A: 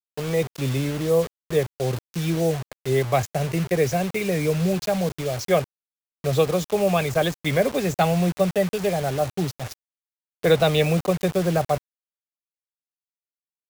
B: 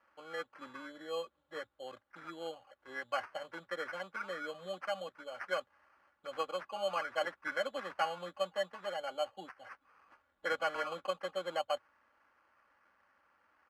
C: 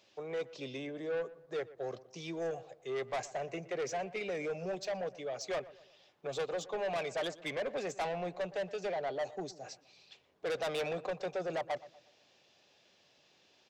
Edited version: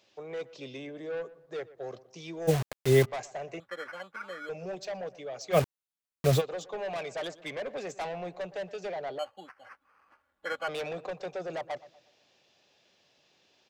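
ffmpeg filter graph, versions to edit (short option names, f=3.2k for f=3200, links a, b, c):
-filter_complex "[0:a]asplit=2[a][b];[1:a]asplit=2[c][d];[2:a]asplit=5[e][f][g][h][i];[e]atrim=end=2.49[j];[a]atrim=start=2.47:end=3.06[k];[f]atrim=start=3.04:end=3.602[l];[c]atrim=start=3.598:end=4.492[m];[g]atrim=start=4.488:end=5.58[n];[b]atrim=start=5.52:end=6.42[o];[h]atrim=start=6.36:end=9.192[p];[d]atrim=start=9.188:end=10.682[q];[i]atrim=start=10.678[r];[j][k]acrossfade=d=0.02:c1=tri:c2=tri[s];[s][l]acrossfade=d=0.02:c1=tri:c2=tri[t];[t][m]acrossfade=d=0.004:c1=hsin:c2=hsin[u];[u][n]acrossfade=d=0.004:c1=hsin:c2=hsin[v];[v][o]acrossfade=d=0.06:c1=tri:c2=tri[w];[w][p]acrossfade=d=0.06:c1=tri:c2=tri[x];[x][q]acrossfade=d=0.004:c1=hsin:c2=hsin[y];[y][r]acrossfade=d=0.004:c1=hsin:c2=hsin"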